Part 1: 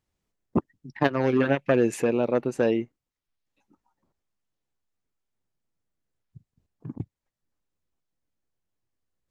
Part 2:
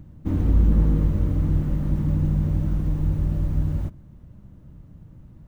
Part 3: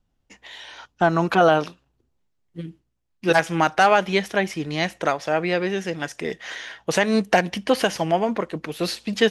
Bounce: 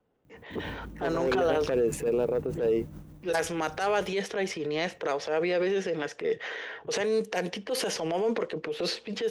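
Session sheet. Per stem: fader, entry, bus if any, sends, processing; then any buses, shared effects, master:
-4.5 dB, 0.00 s, bus A, no send, Wiener smoothing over 9 samples; upward expander 1.5:1, over -30 dBFS
2.62 s -6 dB -> 3.38 s -14.5 dB, 0.25 s, no bus, no send, compressor 2.5:1, threshold -26 dBFS, peak gain reduction 9 dB; tremolo 6.6 Hz, depth 62%
-8.0 dB, 0.00 s, bus A, no send, low-pass opened by the level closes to 1800 Hz, open at -13.5 dBFS; three-band squash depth 40%
bus A: 0.0 dB, bell 450 Hz +14 dB 0.5 oct; limiter -16.5 dBFS, peak gain reduction 11.5 dB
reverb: off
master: HPF 220 Hz 6 dB/oct; high shelf 5700 Hz +10 dB; transient shaper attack -8 dB, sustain +5 dB

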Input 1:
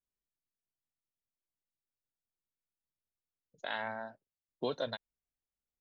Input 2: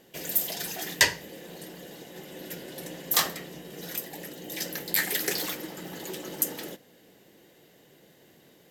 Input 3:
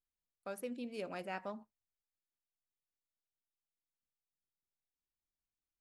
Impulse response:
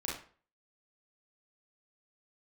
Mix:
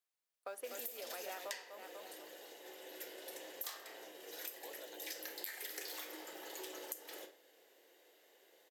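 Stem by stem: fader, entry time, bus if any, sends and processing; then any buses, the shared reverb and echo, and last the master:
-18.0 dB, 0.00 s, no send, no echo send, dry
-10.5 dB, 0.50 s, send -6.5 dB, no echo send, dry
+2.5 dB, 0.00 s, no send, echo send -5.5 dB, modulation noise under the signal 27 dB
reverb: on, RT60 0.45 s, pre-delay 32 ms
echo: feedback echo 0.246 s, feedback 40%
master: HPF 410 Hz 24 dB/oct; compressor 20:1, threshold -41 dBFS, peak gain reduction 19.5 dB

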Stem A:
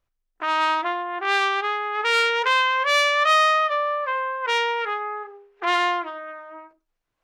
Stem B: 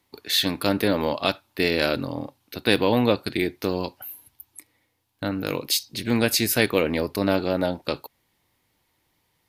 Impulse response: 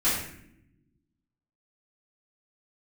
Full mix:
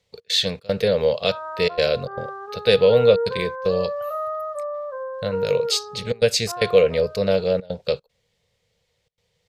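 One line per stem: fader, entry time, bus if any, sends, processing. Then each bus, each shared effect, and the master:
-3.0 dB, 0.85 s, no send, steep low-pass 1500 Hz 72 dB/oct
+2.0 dB, 0.00 s, no send, step gate "xx.xxx.xxxxxxxx" 152 bpm -24 dB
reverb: off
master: EQ curve 190 Hz 0 dB, 310 Hz -23 dB, 470 Hz +9 dB, 890 Hz -11 dB, 3300 Hz 0 dB, 7700 Hz -1 dB, 11000 Hz -17 dB

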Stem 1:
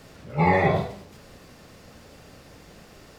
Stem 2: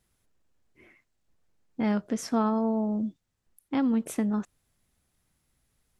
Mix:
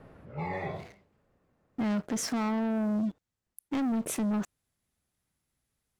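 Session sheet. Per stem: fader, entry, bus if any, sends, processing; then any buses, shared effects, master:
-2.0 dB, 0.00 s, no send, low-pass opened by the level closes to 1300 Hz, open at -19.5 dBFS; auto duck -20 dB, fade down 1.10 s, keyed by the second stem
-1.0 dB, 0.00 s, no send, HPF 54 Hz 6 dB/oct; sample leveller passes 3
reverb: off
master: limiter -26 dBFS, peak gain reduction 9.5 dB

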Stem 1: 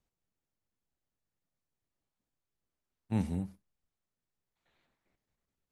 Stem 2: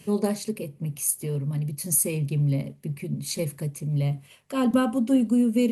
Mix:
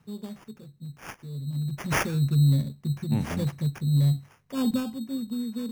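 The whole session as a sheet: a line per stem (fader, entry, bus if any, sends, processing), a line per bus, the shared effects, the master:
+1.5 dB, 0.00 s, no send, dry
1.26 s -20.5 dB -> 1.85 s -8.5 dB -> 4.62 s -8.5 dB -> 5.01 s -17.5 dB, 0.00 s, no send, tone controls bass +14 dB, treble +5 dB; sample-and-hold 11×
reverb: off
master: dry

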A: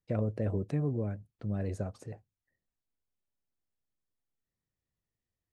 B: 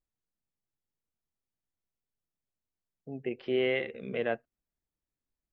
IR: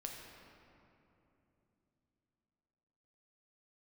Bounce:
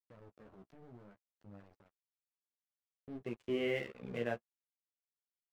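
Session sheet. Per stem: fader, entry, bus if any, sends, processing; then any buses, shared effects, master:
-7.0 dB, 0.00 s, no send, HPF 350 Hz 6 dB/oct; limiter -34.5 dBFS, peak gain reduction 10.5 dB; auto duck -22 dB, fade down 1.45 s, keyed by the second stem
-3.0 dB, 0.00 s, no send, gate with hold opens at -44 dBFS; low shelf 100 Hz +7.5 dB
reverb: off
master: tone controls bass +4 dB, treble -6 dB; crossover distortion -48.5 dBFS; flange 0.6 Hz, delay 8.9 ms, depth 8.9 ms, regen -15%

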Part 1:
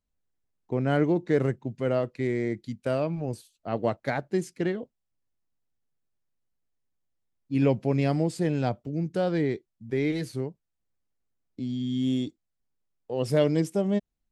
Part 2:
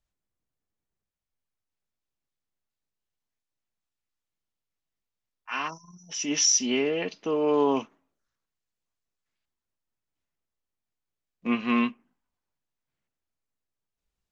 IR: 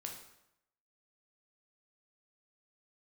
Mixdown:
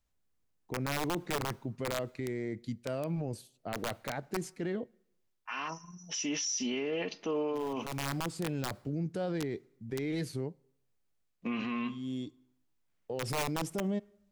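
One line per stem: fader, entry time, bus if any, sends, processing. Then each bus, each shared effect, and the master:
-1.5 dB, 0.00 s, send -23.5 dB, wrapped overs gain 16.5 dB; auto duck -14 dB, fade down 0.20 s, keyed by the second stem
+0.5 dB, 0.00 s, send -21 dB, dry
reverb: on, RT60 0.80 s, pre-delay 8 ms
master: limiter -26.5 dBFS, peak gain reduction 15.5 dB

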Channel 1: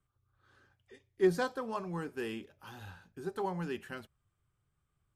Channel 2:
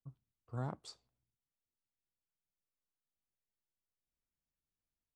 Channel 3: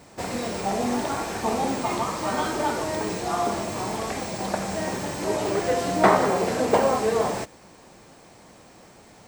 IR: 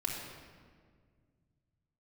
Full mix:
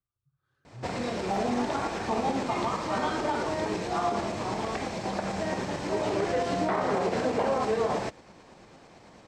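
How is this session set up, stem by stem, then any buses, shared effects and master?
-12.0 dB, 0.00 s, no send, dry
-12.0 dB, 0.20 s, send -10.5 dB, spectral expander 2.5:1
-0.5 dB, 0.65 s, no send, LPF 5100 Hz 12 dB/oct; tremolo saw up 9 Hz, depth 35%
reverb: on, RT60 1.8 s, pre-delay 3 ms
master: limiter -18 dBFS, peak gain reduction 11.5 dB

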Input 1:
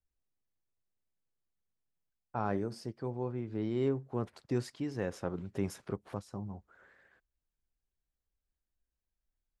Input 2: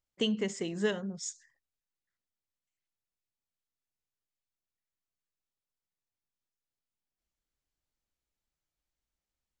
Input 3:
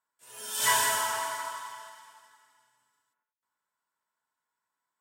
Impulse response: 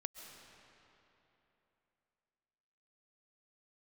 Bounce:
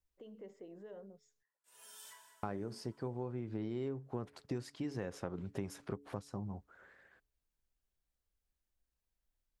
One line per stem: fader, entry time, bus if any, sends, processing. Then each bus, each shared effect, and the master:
+0.5 dB, 0.00 s, muted 1.43–2.43, no send, dry
-7.0 dB, 0.00 s, no send, limiter -30 dBFS, peak gain reduction 13.5 dB; band-pass 530 Hz, Q 1.7
-13.0 dB, 1.45 s, no send, compressor 10:1, threshold -30 dBFS, peak gain reduction 10.5 dB; low shelf 220 Hz -10.5 dB; auto duck -21 dB, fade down 0.60 s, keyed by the first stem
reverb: off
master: de-hum 142.2 Hz, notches 3; compressor 12:1, threshold -35 dBFS, peak gain reduction 10 dB

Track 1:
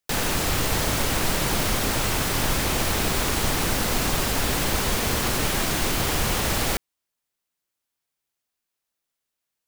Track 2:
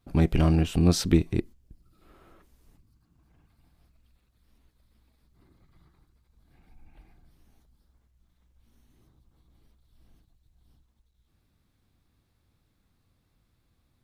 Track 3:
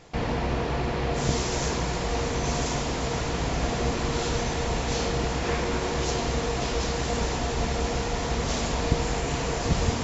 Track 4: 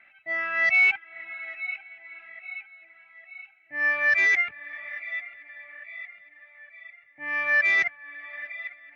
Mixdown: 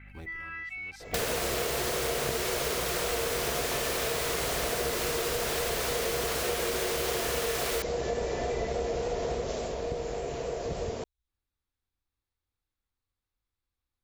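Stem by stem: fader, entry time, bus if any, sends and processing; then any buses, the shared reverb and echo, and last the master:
+3.0 dB, 1.05 s, no bus, no send, HPF 930 Hz 24 dB/oct
-14.5 dB, 0.00 s, bus A, no send, bell 170 Hz -14 dB 1.9 oct; short-mantissa float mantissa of 4-bit
9.3 s -2 dB -> 9.75 s -11.5 dB, 1.00 s, no bus, no send, band shelf 500 Hz +11.5 dB 1.1 oct; vibrato 3.5 Hz 32 cents
+0.5 dB, 0.00 s, bus A, no send, compressor, threshold -26 dBFS, peak gain reduction 9 dB; hum 50 Hz, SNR 17 dB
bus A: 0.0 dB, Butterworth band-stop 650 Hz, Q 5.8; compressor 12:1, threshold -37 dBFS, peak gain reduction 13 dB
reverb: off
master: compressor 4:1, threshold -29 dBFS, peak gain reduction 11.5 dB

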